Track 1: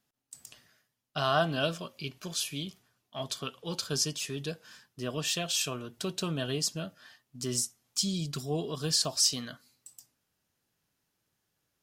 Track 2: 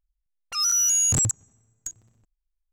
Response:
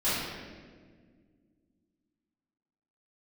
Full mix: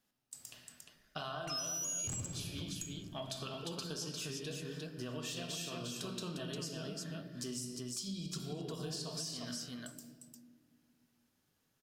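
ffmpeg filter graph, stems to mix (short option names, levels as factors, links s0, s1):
-filter_complex "[0:a]acompressor=threshold=0.0224:ratio=2.5,volume=0.668,asplit=3[s0][s1][s2];[s1]volume=0.251[s3];[s2]volume=0.708[s4];[1:a]adelay=950,volume=0.531,asplit=2[s5][s6];[s6]volume=0.211[s7];[2:a]atrim=start_sample=2205[s8];[s3][s7]amix=inputs=2:normalize=0[s9];[s9][s8]afir=irnorm=-1:irlink=0[s10];[s4]aecho=0:1:352:1[s11];[s0][s5][s10][s11]amix=inputs=4:normalize=0,acompressor=threshold=0.0112:ratio=5"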